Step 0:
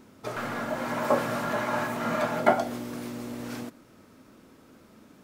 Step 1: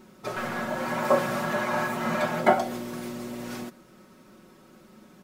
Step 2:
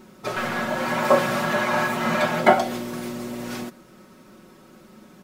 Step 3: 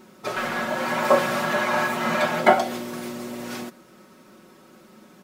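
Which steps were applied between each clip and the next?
comb 5.4 ms, depth 70%
dynamic bell 3.2 kHz, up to +4 dB, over -44 dBFS, Q 0.8; trim +4 dB
bass shelf 110 Hz -12 dB

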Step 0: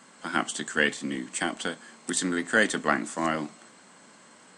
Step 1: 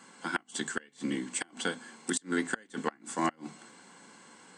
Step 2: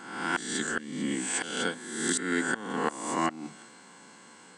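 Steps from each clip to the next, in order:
hum notches 50/100/150/200/250 Hz; inverted gate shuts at -14 dBFS, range -32 dB; comb of notches 620 Hz
reverse spectral sustain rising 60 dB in 0.92 s

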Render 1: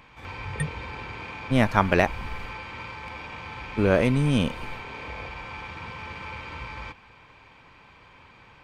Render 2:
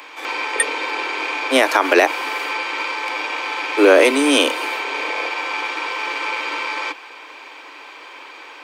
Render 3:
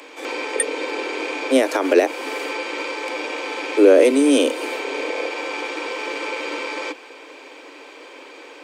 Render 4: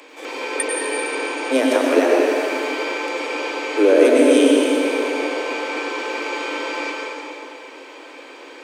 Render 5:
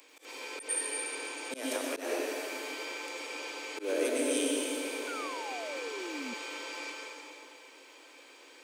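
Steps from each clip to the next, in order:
steep high-pass 280 Hz 96 dB/octave; treble shelf 3.7 kHz +8 dB; loudness maximiser +14 dB; trim -1 dB
graphic EQ 250/500/1000/8000 Hz +10/+10/-4/+7 dB; in parallel at +0.5 dB: compression, threshold -17 dBFS, peak gain reduction 18 dB; on the sum: trim -11 dB
plate-style reverb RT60 2.8 s, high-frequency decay 0.75×, pre-delay 85 ms, DRR -3 dB; trim -3 dB
pre-emphasis filter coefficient 0.8; painted sound fall, 5.07–6.34 s, 230–1500 Hz -37 dBFS; slow attack 115 ms; trim -4.5 dB

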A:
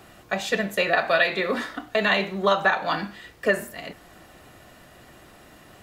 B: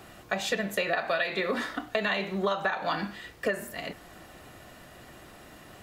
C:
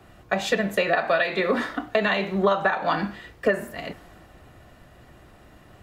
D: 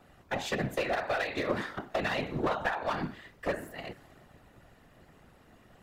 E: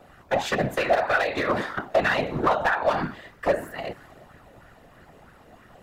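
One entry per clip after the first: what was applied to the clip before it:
compression 5:1, threshold -25 dBFS, peak gain reduction 10 dB
treble shelf 2.8 kHz -8.5 dB; three bands expanded up and down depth 40%; trim +7 dB
one-sided clip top -20.5 dBFS; whisper effect; trim -7.5 dB
hard clipper -22.5 dBFS, distortion -21 dB; sweeping bell 3.1 Hz 530–1600 Hz +9 dB; trim +5 dB

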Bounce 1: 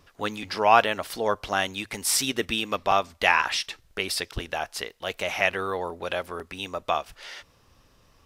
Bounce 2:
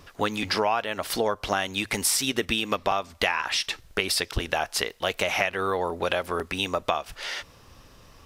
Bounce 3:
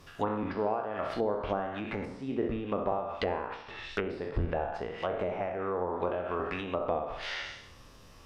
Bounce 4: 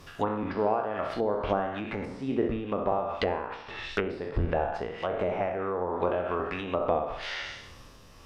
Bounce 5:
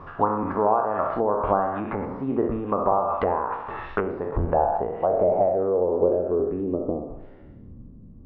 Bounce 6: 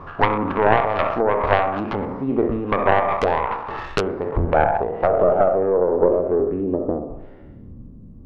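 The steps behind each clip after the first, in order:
compression 10:1, threshold -29 dBFS, peak gain reduction 18 dB; trim +8 dB
spectral sustain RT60 0.78 s; flutter echo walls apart 11.4 m, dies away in 0.42 s; low-pass that closes with the level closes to 740 Hz, closed at -19.5 dBFS; trim -5.5 dB
tremolo 1.3 Hz, depth 31%; trim +4.5 dB
in parallel at +1.5 dB: compression, threshold -35 dBFS, peak gain reduction 13.5 dB; on the sum: low-pass sweep 1.1 kHz -> 220 Hz, 4.16–7.84 s
tracing distortion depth 0.3 ms; trim +4 dB

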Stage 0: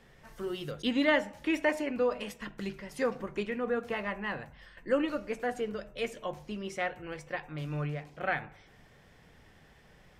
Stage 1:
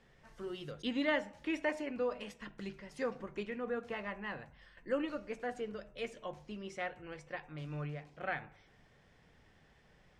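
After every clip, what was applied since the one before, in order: low-pass 8.1 kHz 12 dB/octave; trim -6.5 dB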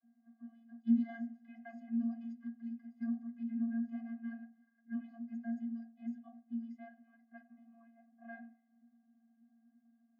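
vocoder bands 32, square 230 Hz; level-controlled noise filter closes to 1.2 kHz, open at -36 dBFS; inharmonic resonator 240 Hz, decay 0.24 s, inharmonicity 0.008; trim +8 dB

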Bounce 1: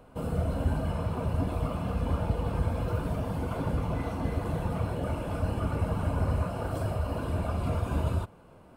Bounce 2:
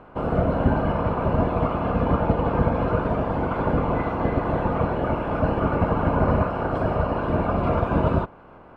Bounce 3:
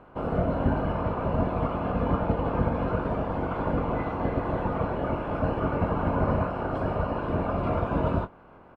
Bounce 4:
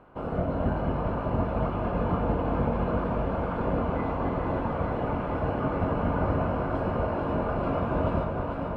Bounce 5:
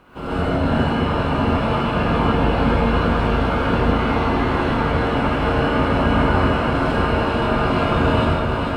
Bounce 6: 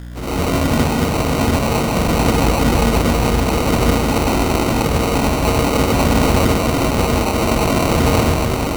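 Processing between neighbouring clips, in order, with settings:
spectral peaks clipped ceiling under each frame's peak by 13 dB; low-pass 1.8 kHz 12 dB/octave; trim +7.5 dB
doubling 22 ms -10 dB; trim -5 dB
echo whose repeats swap between lows and highs 221 ms, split 880 Hz, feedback 90%, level -5 dB; trim -3 dB
FFT filter 380 Hz 0 dB, 600 Hz -5 dB, 4.4 kHz +14 dB; gated-style reverb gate 170 ms rising, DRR -7.5 dB; trim +2.5 dB
hum 60 Hz, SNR 15 dB; sample-and-hold 26×; trim +2.5 dB

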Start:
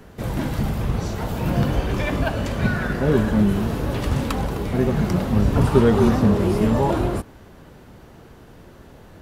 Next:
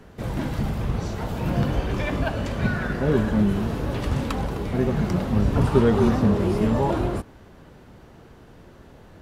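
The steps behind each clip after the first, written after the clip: treble shelf 10 kHz -8 dB; trim -2.5 dB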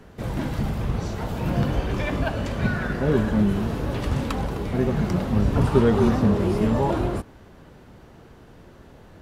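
no audible change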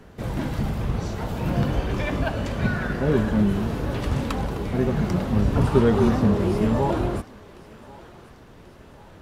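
thinning echo 1087 ms, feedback 62%, high-pass 790 Hz, level -18 dB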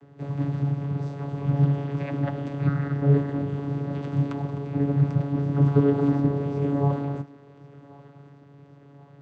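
vocoder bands 16, saw 141 Hz

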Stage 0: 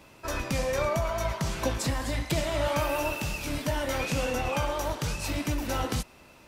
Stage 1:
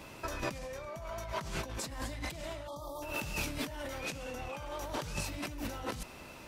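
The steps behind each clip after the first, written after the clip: compressor with a negative ratio -37 dBFS, ratio -1; spectral selection erased 2.68–3.02 s, 1.3–3.2 kHz; trim -3 dB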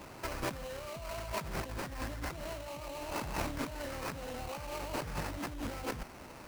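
sample-rate reducer 3.5 kHz, jitter 20%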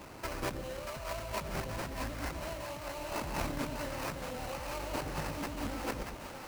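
two-band feedback delay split 550 Hz, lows 116 ms, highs 634 ms, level -5.5 dB

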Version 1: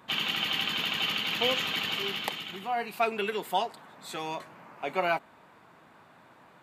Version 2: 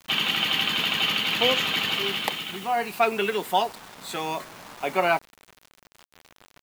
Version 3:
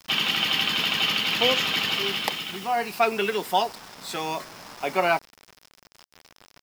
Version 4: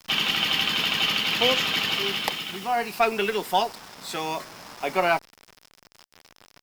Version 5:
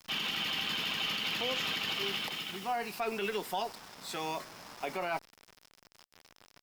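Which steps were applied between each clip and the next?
word length cut 8-bit, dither none; trim +5.5 dB
peaking EQ 5.2 kHz +9 dB 0.28 oct
Chebyshev shaper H 6 -32 dB, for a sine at -6.5 dBFS
peak limiter -17.5 dBFS, peak gain reduction 10.5 dB; trim -6.5 dB

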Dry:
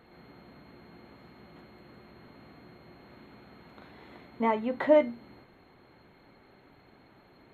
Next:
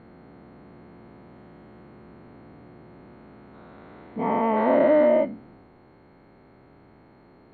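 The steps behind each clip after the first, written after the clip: every event in the spectrogram widened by 480 ms; low-pass 1 kHz 6 dB/octave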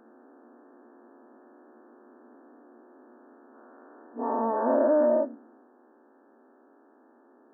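FFT band-pass 220–1800 Hz; trim -4 dB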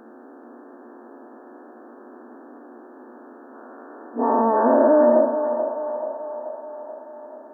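dynamic bell 540 Hz, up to -3 dB, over -36 dBFS, Q 6.5; in parallel at +2 dB: peak limiter -21.5 dBFS, peak gain reduction 7.5 dB; on the sum: band-passed feedback delay 433 ms, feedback 65%, band-pass 780 Hz, level -7.5 dB; trim +3 dB

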